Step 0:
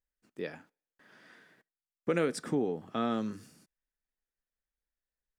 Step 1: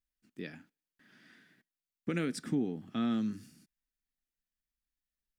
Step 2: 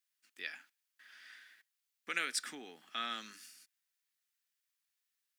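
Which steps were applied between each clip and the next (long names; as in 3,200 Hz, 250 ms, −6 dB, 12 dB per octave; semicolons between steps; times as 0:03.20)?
octave-band graphic EQ 250/500/1,000/8,000 Hz +5/−11/−9/−3 dB
high-pass filter 1,400 Hz 12 dB per octave; level +7.5 dB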